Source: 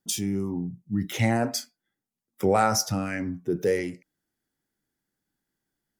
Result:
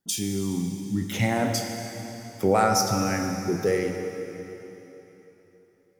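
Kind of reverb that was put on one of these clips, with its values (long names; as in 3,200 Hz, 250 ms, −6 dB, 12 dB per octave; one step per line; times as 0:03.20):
dense smooth reverb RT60 3.6 s, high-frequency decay 0.9×, DRR 3.5 dB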